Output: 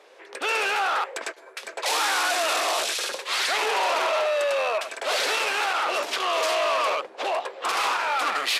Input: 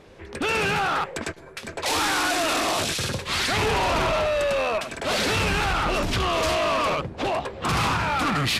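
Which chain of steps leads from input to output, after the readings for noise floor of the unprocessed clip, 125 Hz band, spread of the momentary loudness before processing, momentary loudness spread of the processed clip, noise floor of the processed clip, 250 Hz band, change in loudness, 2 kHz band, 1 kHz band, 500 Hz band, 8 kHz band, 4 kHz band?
−44 dBFS, below −35 dB, 6 LU, 6 LU, −48 dBFS, −14.5 dB, −0.5 dB, 0.0 dB, 0.0 dB, −1.0 dB, 0.0 dB, 0.0 dB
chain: high-pass filter 450 Hz 24 dB per octave

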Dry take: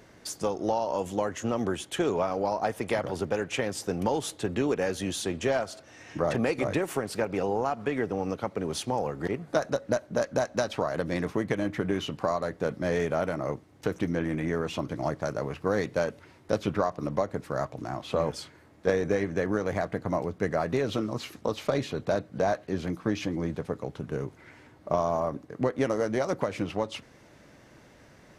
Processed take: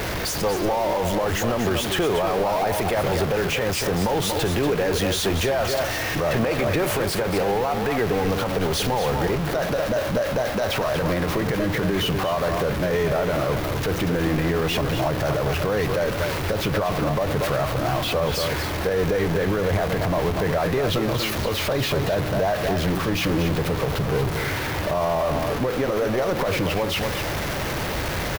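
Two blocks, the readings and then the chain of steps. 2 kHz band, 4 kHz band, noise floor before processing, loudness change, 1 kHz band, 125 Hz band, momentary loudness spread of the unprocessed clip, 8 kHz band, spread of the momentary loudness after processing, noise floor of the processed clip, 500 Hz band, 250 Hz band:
+9.5 dB, +13.0 dB, −55 dBFS, +7.0 dB, +7.0 dB, +10.5 dB, 6 LU, +9.5 dB, 2 LU, −27 dBFS, +6.0 dB, +5.5 dB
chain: converter with a step at zero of −26.5 dBFS
octave-band graphic EQ 125/250/8,000 Hz −3/−8/−7 dB
single-tap delay 236 ms −8 dB
brickwall limiter −21 dBFS, peak gain reduction 9.5 dB
low-shelf EQ 260 Hz +6 dB
level +5.5 dB

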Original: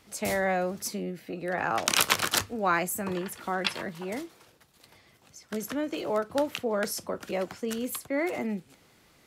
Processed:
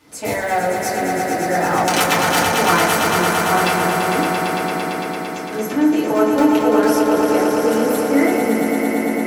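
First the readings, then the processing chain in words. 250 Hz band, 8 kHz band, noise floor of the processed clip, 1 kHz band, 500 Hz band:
+16.5 dB, +8.5 dB, −27 dBFS, +15.5 dB, +13.5 dB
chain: high-pass filter 60 Hz 12 dB per octave
in parallel at −11 dB: wrap-around overflow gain 19 dB
on the sum: echo that builds up and dies away 113 ms, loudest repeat 5, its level −7 dB
feedback delay network reverb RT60 0.73 s, low-frequency decay 0.9×, high-frequency decay 0.3×, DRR −8.5 dB
level −2 dB

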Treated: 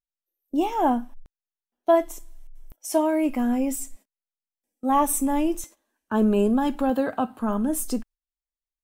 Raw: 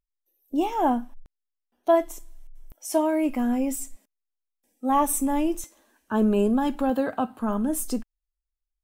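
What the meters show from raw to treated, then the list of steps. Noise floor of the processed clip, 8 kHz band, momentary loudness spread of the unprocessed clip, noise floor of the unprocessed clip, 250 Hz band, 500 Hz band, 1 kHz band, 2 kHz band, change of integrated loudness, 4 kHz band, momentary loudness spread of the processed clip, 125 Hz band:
below −85 dBFS, +1.0 dB, 12 LU, −84 dBFS, +1.0 dB, +1.0 dB, +1.0 dB, +1.0 dB, +1.0 dB, +1.0 dB, 12 LU, can't be measured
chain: noise gate −45 dBFS, range −14 dB
level +1 dB

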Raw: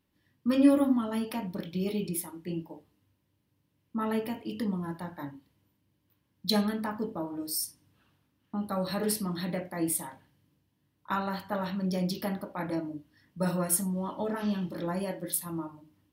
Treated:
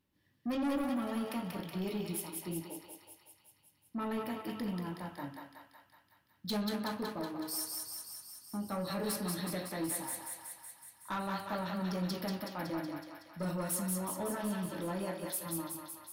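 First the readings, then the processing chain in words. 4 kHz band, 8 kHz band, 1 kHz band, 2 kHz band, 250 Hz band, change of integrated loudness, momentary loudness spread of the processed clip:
−4.5 dB, −4.5 dB, −3.5 dB, −3.0 dB, −7.0 dB, −6.5 dB, 11 LU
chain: soft clipping −27 dBFS, distortion −9 dB
feedback echo with a high-pass in the loop 186 ms, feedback 69%, high-pass 610 Hz, level −3 dB
level −3.5 dB

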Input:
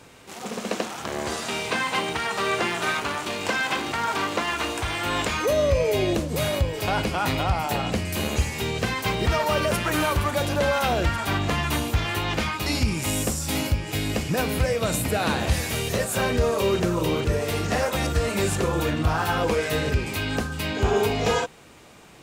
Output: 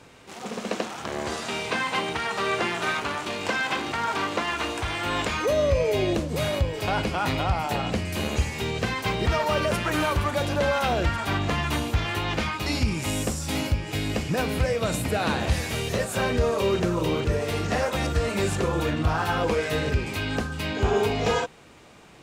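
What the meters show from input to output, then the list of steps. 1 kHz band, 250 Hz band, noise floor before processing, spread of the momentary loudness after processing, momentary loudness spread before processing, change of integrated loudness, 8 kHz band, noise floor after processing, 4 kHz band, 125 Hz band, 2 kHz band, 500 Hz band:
−1.0 dB, −1.0 dB, −39 dBFS, 5 LU, 5 LU, −1.5 dB, −4.5 dB, −41 dBFS, −2.0 dB, −1.0 dB, −1.5 dB, −1.0 dB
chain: high-shelf EQ 10,000 Hz −10.5 dB
level −1 dB

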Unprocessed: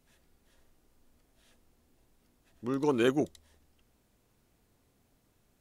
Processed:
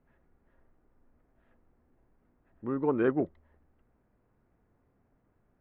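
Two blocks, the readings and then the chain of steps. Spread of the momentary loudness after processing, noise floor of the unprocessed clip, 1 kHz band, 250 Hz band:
11 LU, −71 dBFS, 0.0 dB, 0.0 dB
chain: low-pass filter 1,800 Hz 24 dB per octave

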